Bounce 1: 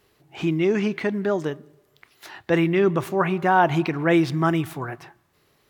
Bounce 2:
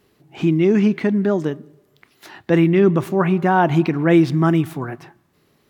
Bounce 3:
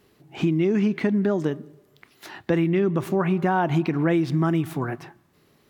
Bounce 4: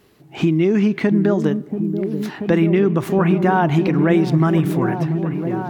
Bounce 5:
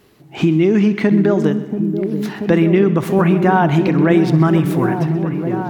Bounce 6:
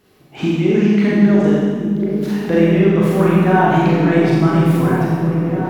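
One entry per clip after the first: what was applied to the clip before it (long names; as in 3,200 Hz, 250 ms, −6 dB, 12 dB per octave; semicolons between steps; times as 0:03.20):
parametric band 220 Hz +9 dB 1.5 octaves
downward compressor, threshold −18 dBFS, peak gain reduction 9.5 dB
echo whose low-pass opens from repeat to repeat 684 ms, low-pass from 400 Hz, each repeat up 1 octave, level −6 dB; level +5 dB
echo machine with several playback heads 64 ms, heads first and second, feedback 55%, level −18.5 dB; level +2.5 dB
four-comb reverb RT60 1.5 s, combs from 30 ms, DRR −6 dB; level −6 dB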